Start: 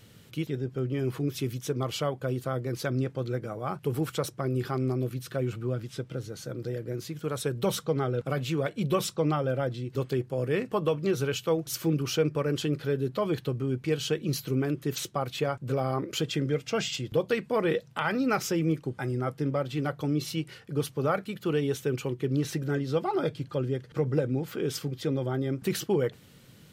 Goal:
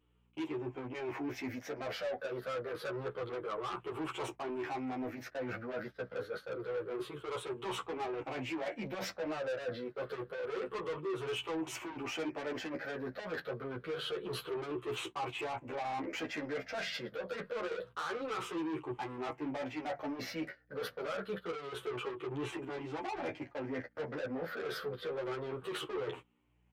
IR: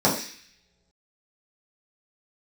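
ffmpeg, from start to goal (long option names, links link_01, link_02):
-filter_complex "[0:a]afftfilt=real='re*pow(10,12/40*sin(2*PI*(0.66*log(max(b,1)*sr/1024/100)/log(2)-(-0.27)*(pts-256)/sr)))':imag='im*pow(10,12/40*sin(2*PI*(0.66*log(max(b,1)*sr/1024/100)/log(2)-(-0.27)*(pts-256)/sr)))':win_size=1024:overlap=0.75,agate=range=-30dB:threshold=-38dB:ratio=16:detection=peak,acrossover=split=380 2400:gain=0.141 1 0.0631[link_01][link_02][link_03];[link_01][link_02][link_03]amix=inputs=3:normalize=0,asplit=2[link_04][link_05];[link_05]adelay=16,volume=-12dB[link_06];[link_04][link_06]amix=inputs=2:normalize=0,alimiter=limit=-24dB:level=0:latency=1:release=52,asoftclip=type=tanh:threshold=-37.5dB,areverse,acompressor=threshold=-48dB:ratio=16,areverse,aeval=exprs='val(0)+0.000112*(sin(2*PI*60*n/s)+sin(2*PI*2*60*n/s)/2+sin(2*PI*3*60*n/s)/3+sin(2*PI*4*60*n/s)/4+sin(2*PI*5*60*n/s)/5)':channel_layout=same,lowshelf=frequency=120:gain=-9,asplit=2[link_07][link_08];[link_08]adelay=10.8,afreqshift=-1.7[link_09];[link_07][link_09]amix=inputs=2:normalize=1,volume=15dB"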